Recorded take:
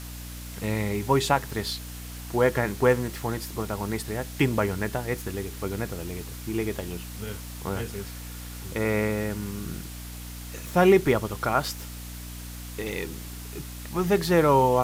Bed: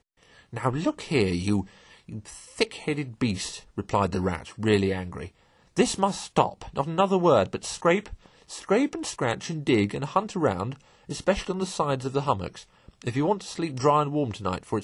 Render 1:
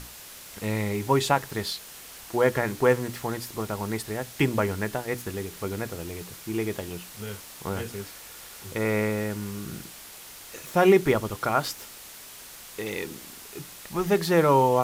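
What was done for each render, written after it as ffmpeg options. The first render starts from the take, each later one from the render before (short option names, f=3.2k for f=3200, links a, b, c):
-af "bandreject=f=60:t=h:w=6,bandreject=f=120:t=h:w=6,bandreject=f=180:t=h:w=6,bandreject=f=240:t=h:w=6,bandreject=f=300:t=h:w=6"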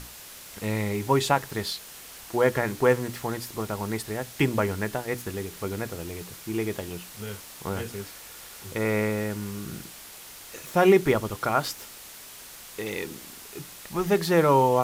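-af anull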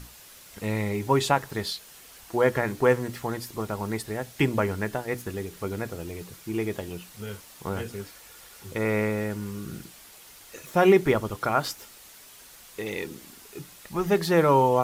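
-af "afftdn=nr=6:nf=-45"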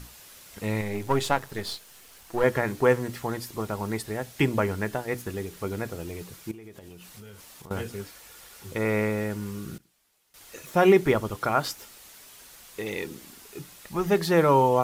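-filter_complex "[0:a]asettb=1/sr,asplit=3[a][b][c];[a]atrim=end=0.814[d];[b]atrim=start=0.81:end=2.44,asetpts=PTS-STARTPTS,afade=t=in:d=0.004:c=qsin,afade=t=out:st=1.626:d=0.004:c=qsin,aeval=exprs='if(lt(val(0),0),0.447*val(0),val(0))':c=same[e];[c]atrim=start=2.436[f];[d][e]acrossfade=d=0.004:c1=hsin:c2=qsin[g];[g][f]acrossfade=d=0.004:c1=qsin:c2=hsin,asettb=1/sr,asplit=3[h][i][j];[h]atrim=end=6.514[k];[i]atrim=start=6.51:end=7.71,asetpts=PTS-STARTPTS,afade=t=in:d=0.004:c=qsin,afade=t=out:st=1.196:d=0.004:c=qsin,acompressor=threshold=-41dB:ratio=10:attack=3.2:release=140:knee=1:detection=peak[l];[j]atrim=start=7.706[m];[k][l]acrossfade=d=0.004:c1=hsin:c2=qsin[n];[n][m]acrossfade=d=0.004:c1=qsin:c2=hsin,asplit=3[o][p][q];[o]atrim=end=9.78,asetpts=PTS-STARTPTS,afade=t=out:st=9.52:d=0.26:c=log:silence=0.0944061[r];[p]atrim=start=9.78:end=10.34,asetpts=PTS-STARTPTS,volume=-20.5dB[s];[q]atrim=start=10.34,asetpts=PTS-STARTPTS,afade=t=in:d=0.26:c=log:silence=0.0944061[t];[r][s][t]concat=n=3:v=0:a=1"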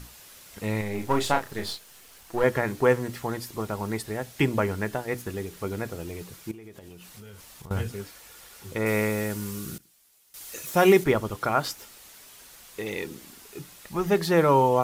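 -filter_complex "[0:a]asettb=1/sr,asplit=3[a][b][c];[a]atrim=end=0.954[d];[b]atrim=start=0.95:end=1.72,asetpts=PTS-STARTPTS,afade=t=in:d=0.004:c=qsin,afade=t=out:st=0.766:d=0.004:c=qsin,asplit=2[e][f];[f]adelay=33,volume=-6dB[g];[e][g]amix=inputs=2:normalize=0,atrim=end_sample=33957[h];[c]atrim=start=1.716[i];[d][h]acrossfade=d=0.004:c1=hsin:c2=qsin[j];[j][i]acrossfade=d=0.004:c1=qsin:c2=hsin,asettb=1/sr,asplit=3[k][l][m];[k]atrim=end=7.214[n];[l]atrim=start=7.21:end=7.92,asetpts=PTS-STARTPTS,afade=t=in:d=0.004:c=qsin,afade=t=out:st=0.706:d=0.004:c=qsin,asubboost=boost=12:cutoff=160[o];[m]atrim=start=7.916[p];[n][o]acrossfade=d=0.004:c1=hsin:c2=qsin[q];[q][p]acrossfade=d=0.004:c1=qsin:c2=hsin,asettb=1/sr,asplit=3[r][s][t];[r]atrim=end=8.864[u];[s]atrim=start=8.86:end=11.04,asetpts=PTS-STARTPTS,afade=t=in:d=0.004:c=qsin,afade=t=out:st=2.176:d=0.004:c=qsin,highshelf=f=4.2k:g=10.5[v];[t]atrim=start=11.036[w];[u][v]acrossfade=d=0.004:c1=hsin:c2=qsin[x];[x][w]acrossfade=d=0.004:c1=qsin:c2=hsin"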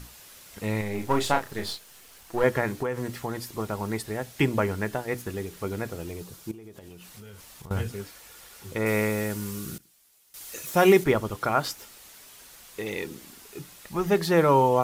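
-filter_complex "[0:a]asettb=1/sr,asplit=3[a][b][c];[a]atrim=end=2.794[d];[b]atrim=start=2.79:end=3.42,asetpts=PTS-STARTPTS,afade=t=in:d=0.004:c=qsin,afade=t=out:st=0.626:d=0.004:c=qsin,acompressor=threshold=-24dB:ratio=10:attack=3.2:release=140:knee=1:detection=peak[e];[c]atrim=start=3.416[f];[d][e]acrossfade=d=0.004:c1=hsin:c2=qsin[g];[g][f]acrossfade=d=0.004:c1=qsin:c2=hsin,asettb=1/sr,asplit=3[h][i][j];[h]atrim=end=6.134[k];[i]atrim=start=6.13:end=6.77,asetpts=PTS-STARTPTS,afade=t=in:d=0.004:c=qsin,afade=t=out:st=0.636:d=0.004:c=qsin,equalizer=f=2.1k:w=1.6:g=-6.5[l];[j]atrim=start=6.766[m];[k][l]acrossfade=d=0.004:c1=hsin:c2=qsin[n];[n][m]acrossfade=d=0.004:c1=qsin:c2=hsin"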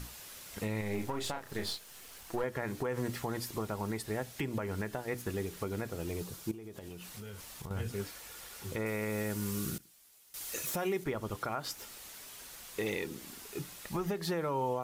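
-af "acompressor=threshold=-24dB:ratio=6,alimiter=limit=-24dB:level=0:latency=1:release=349"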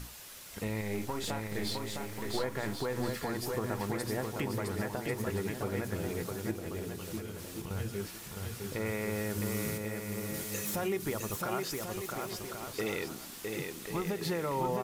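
-af "aecho=1:1:660|1089|1368|1549|1667:0.631|0.398|0.251|0.158|0.1"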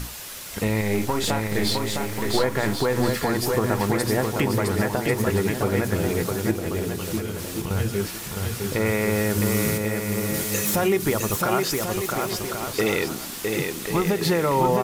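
-af "volume=12dB"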